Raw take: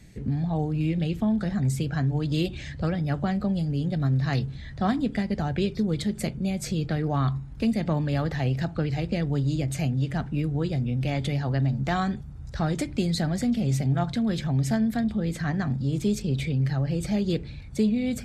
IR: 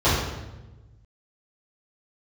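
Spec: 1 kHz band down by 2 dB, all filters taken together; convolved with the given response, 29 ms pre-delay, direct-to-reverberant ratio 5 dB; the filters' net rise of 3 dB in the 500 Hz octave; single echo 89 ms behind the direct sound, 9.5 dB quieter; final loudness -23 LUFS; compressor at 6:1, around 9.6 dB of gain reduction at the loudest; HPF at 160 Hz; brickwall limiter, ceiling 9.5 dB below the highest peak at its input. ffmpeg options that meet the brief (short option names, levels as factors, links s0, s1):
-filter_complex "[0:a]highpass=160,equalizer=f=500:t=o:g=5.5,equalizer=f=1000:t=o:g=-6.5,acompressor=threshold=0.0316:ratio=6,alimiter=level_in=1.68:limit=0.0631:level=0:latency=1,volume=0.596,aecho=1:1:89:0.335,asplit=2[s0][s1];[1:a]atrim=start_sample=2205,adelay=29[s2];[s1][s2]afir=irnorm=-1:irlink=0,volume=0.0562[s3];[s0][s3]amix=inputs=2:normalize=0,volume=2.24"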